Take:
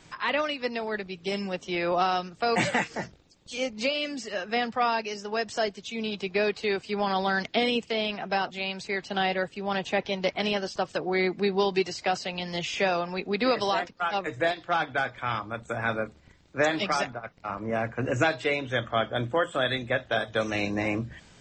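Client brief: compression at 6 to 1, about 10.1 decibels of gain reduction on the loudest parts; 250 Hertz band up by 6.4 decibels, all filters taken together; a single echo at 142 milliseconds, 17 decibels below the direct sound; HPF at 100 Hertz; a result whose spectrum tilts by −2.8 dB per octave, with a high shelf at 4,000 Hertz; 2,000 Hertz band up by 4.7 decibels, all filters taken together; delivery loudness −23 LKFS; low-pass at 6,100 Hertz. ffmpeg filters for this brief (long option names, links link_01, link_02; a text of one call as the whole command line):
ffmpeg -i in.wav -af "highpass=100,lowpass=6100,equalizer=frequency=250:width_type=o:gain=8.5,equalizer=frequency=2000:width_type=o:gain=5,highshelf=frequency=4000:gain=4,acompressor=threshold=-27dB:ratio=6,aecho=1:1:142:0.141,volume=8dB" out.wav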